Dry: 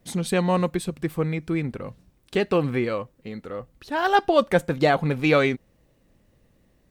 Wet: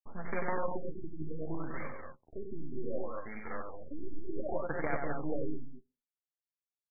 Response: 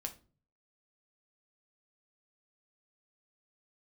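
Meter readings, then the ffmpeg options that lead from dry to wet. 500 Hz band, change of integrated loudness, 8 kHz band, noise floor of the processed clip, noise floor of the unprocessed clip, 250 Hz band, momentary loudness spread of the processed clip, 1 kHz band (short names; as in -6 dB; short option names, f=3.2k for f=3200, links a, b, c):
-15.0 dB, -16.5 dB, n/a, under -85 dBFS, -63 dBFS, -15.5 dB, 11 LU, -16.0 dB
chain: -filter_complex "[0:a]tiltshelf=f=890:g=-10,acrossover=split=210|870[a][b][c];[c]acompressor=threshold=-32dB:ratio=4[d];[a][b][d]amix=inputs=3:normalize=0,alimiter=limit=-22dB:level=0:latency=1:release=293,acrusher=bits=5:dc=4:mix=0:aa=0.000001,asplit=2[e][f];[f]adelay=13,volume=-9dB[g];[e][g]amix=inputs=2:normalize=0,aecho=1:1:93.29|198.3|230.3:0.631|0.398|0.501,asplit=2[h][i];[1:a]atrim=start_sample=2205,asetrate=79380,aresample=44100[j];[i][j]afir=irnorm=-1:irlink=0,volume=-4dB[k];[h][k]amix=inputs=2:normalize=0,afftfilt=real='re*lt(b*sr/1024,370*pow(2400/370,0.5+0.5*sin(2*PI*0.66*pts/sr)))':imag='im*lt(b*sr/1024,370*pow(2400/370,0.5+0.5*sin(2*PI*0.66*pts/sr)))':win_size=1024:overlap=0.75,volume=-3.5dB"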